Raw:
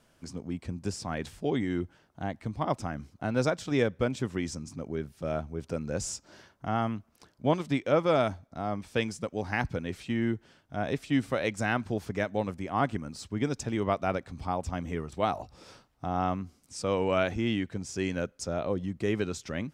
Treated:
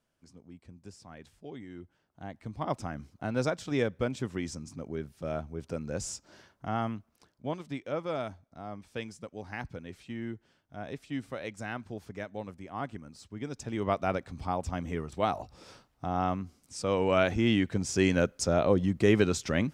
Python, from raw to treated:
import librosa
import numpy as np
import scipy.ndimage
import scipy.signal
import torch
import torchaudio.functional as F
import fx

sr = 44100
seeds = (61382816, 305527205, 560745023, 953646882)

y = fx.gain(x, sr, db=fx.line((1.73, -15.0), (2.72, -2.5), (6.89, -2.5), (7.5, -9.0), (13.42, -9.0), (13.93, -0.5), (16.85, -0.5), (17.9, 6.0)))